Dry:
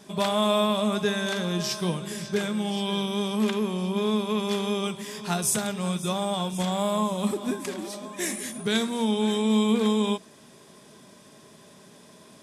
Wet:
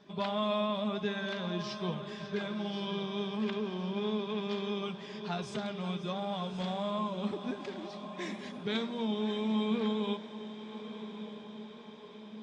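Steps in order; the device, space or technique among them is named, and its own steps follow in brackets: clip after many re-uploads (LPF 4600 Hz 24 dB/oct; bin magnitudes rounded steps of 15 dB); diffused feedback echo 1.16 s, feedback 58%, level -11.5 dB; gain -8 dB

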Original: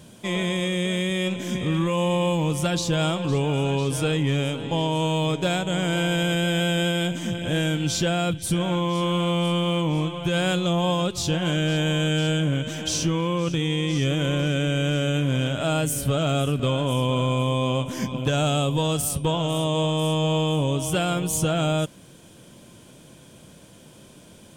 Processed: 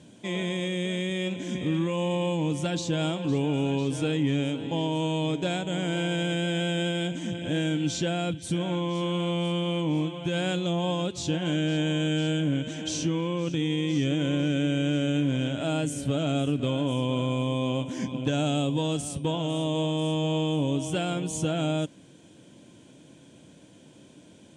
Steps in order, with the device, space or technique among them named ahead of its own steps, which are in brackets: car door speaker (speaker cabinet 83–8300 Hz, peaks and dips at 290 Hz +8 dB, 1200 Hz -7 dB, 5000 Hz -4 dB); gain -5 dB

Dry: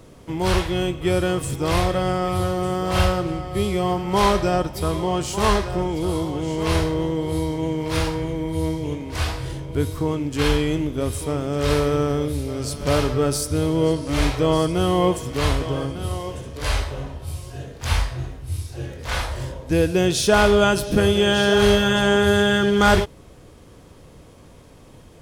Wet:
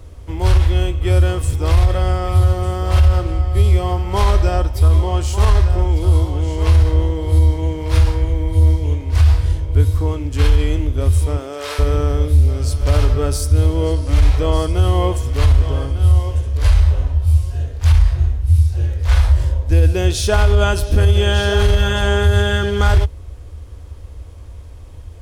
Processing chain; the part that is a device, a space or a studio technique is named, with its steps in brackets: 11.37–11.78 HPF 220 Hz -> 860 Hz 12 dB/oct; car stereo with a boomy subwoofer (resonant low shelf 110 Hz +13 dB, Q 3; limiter -4.5 dBFS, peak gain reduction 11.5 dB)

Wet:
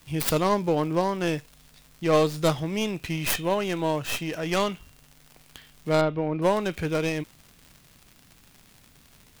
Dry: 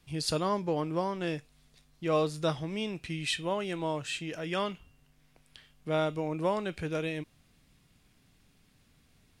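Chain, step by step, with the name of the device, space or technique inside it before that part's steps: record under a worn stylus (tracing distortion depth 0.4 ms; crackle 130/s -44 dBFS; white noise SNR 35 dB); 6.01–6.42 air absorption 320 m; gain +6.5 dB

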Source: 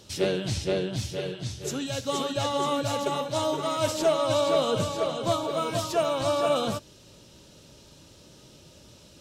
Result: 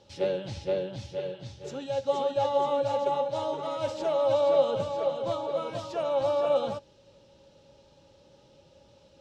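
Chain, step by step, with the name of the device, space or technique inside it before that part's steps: inside a cardboard box (LPF 4700 Hz 12 dB/oct; small resonant body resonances 550/830 Hz, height 16 dB, ringing for 80 ms); gain -8.5 dB

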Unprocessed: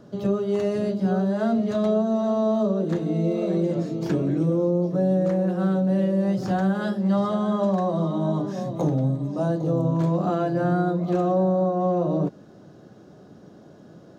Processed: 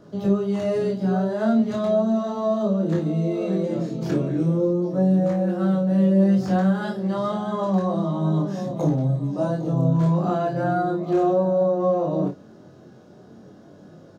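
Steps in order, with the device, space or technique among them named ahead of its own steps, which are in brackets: double-tracked vocal (doubler 31 ms -6.5 dB; chorus 0.35 Hz, delay 19.5 ms, depth 3.5 ms); gain +3 dB

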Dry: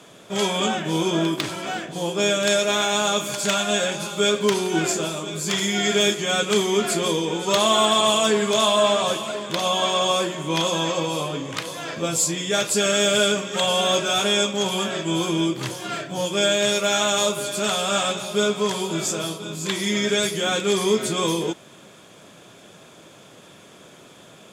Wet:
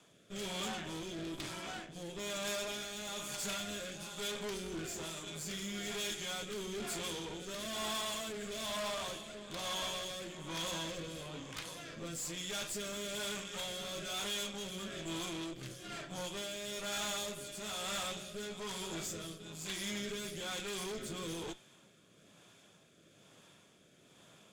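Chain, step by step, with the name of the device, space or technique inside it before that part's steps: de-hum 123.8 Hz, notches 35; overdriven rotary cabinet (tube stage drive 27 dB, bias 0.8; rotary speaker horn 1.1 Hz); bell 480 Hz -4 dB 2.2 oct; gain -6.5 dB

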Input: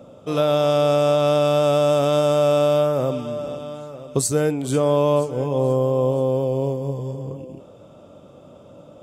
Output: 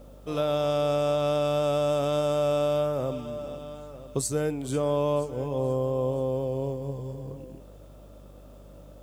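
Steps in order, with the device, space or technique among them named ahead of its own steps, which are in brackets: video cassette with head-switching buzz (buzz 50 Hz, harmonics 37, -42 dBFS -8 dB/oct; white noise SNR 40 dB); gain -7.5 dB

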